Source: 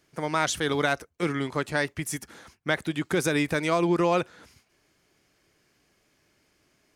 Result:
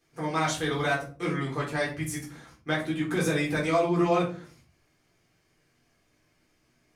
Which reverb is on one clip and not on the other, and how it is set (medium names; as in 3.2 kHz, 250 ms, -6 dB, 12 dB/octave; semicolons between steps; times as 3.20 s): simulated room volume 240 m³, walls furnished, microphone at 3.8 m; trim -9.5 dB